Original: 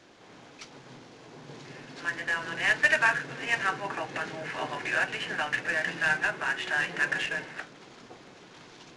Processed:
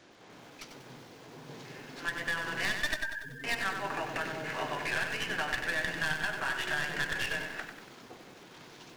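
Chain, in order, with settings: tracing distortion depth 0.2 ms; compressor 12:1, threshold -27 dBFS, peak gain reduction 11.5 dB; 2.94–3.44 loudest bins only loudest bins 4; lo-fi delay 95 ms, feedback 55%, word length 9-bit, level -6.5 dB; gain -1.5 dB

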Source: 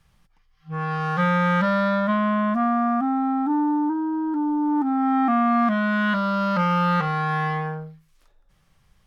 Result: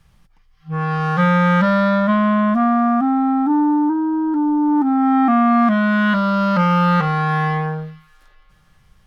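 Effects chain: low shelf 340 Hz +3.5 dB; thin delay 0.444 s, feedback 46%, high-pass 2500 Hz, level -19.5 dB; gain +4 dB

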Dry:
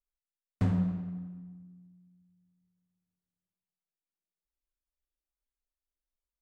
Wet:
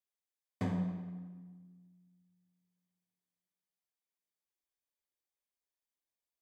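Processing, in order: low shelf 150 Hz -9.5 dB; notch comb 1400 Hz

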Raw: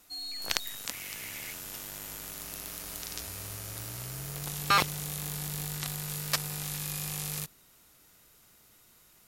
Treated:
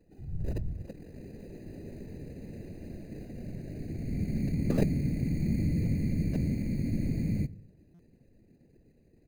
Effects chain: inverse Chebyshev low-pass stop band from 2000 Hz, stop band 70 dB; comb 5.8 ms, depth 97%; in parallel at -3.5 dB: sample-and-hold 20×; on the sum: whisperiser; on a send at -19.5 dB: reverb RT60 0.55 s, pre-delay 3 ms; on the sum: stuck buffer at 7.94, samples 256, times 8; gain +2 dB

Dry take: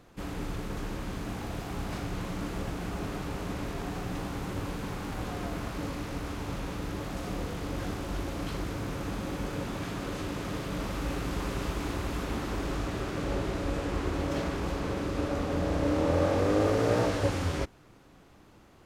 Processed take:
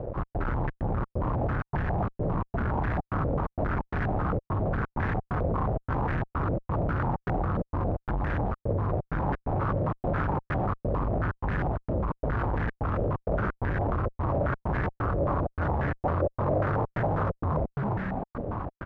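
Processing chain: tracing distortion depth 0.32 ms; resonant low shelf 160 Hz +8.5 dB, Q 1.5; compressor 6:1, threshold -35 dBFS, peak gain reduction 19 dB; on a send: frequency-shifting echo 0.306 s, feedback 35%, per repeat +51 Hz, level -4.5 dB; on the sum: step gate "xx.xxx.xx.xx" 130 bpm -60 dB; in parallel at -8 dB: fuzz box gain 49 dB, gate -54 dBFS; on the sum: stepped low-pass 7.4 Hz 560–1700 Hz; gain -7 dB

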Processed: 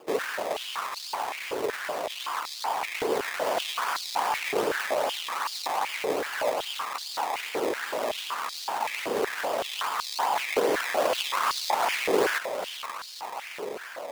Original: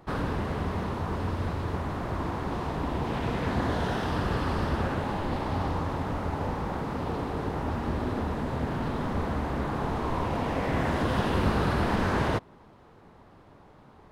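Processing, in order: diffused feedback echo 0.551 s, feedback 73%, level -10 dB; decimation with a swept rate 21×, swing 100% 2.5 Hz; stepped high-pass 5.3 Hz 430–4300 Hz

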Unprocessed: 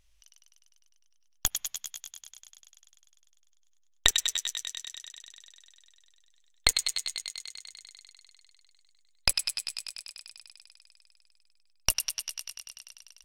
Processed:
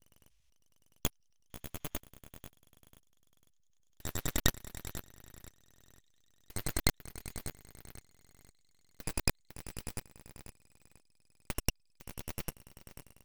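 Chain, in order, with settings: slices in reverse order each 0.1 s, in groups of 5; full-wave rectifier; gain -4.5 dB

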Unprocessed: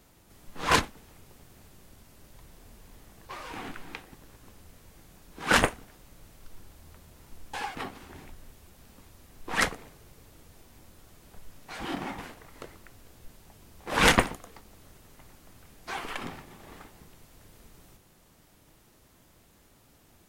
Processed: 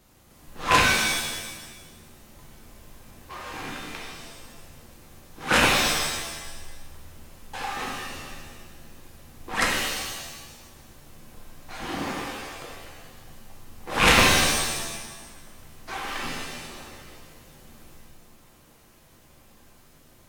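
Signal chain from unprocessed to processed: rattling part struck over -28 dBFS, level -8 dBFS; shimmer reverb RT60 1.2 s, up +7 st, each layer -2 dB, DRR -1.5 dB; gain -1 dB

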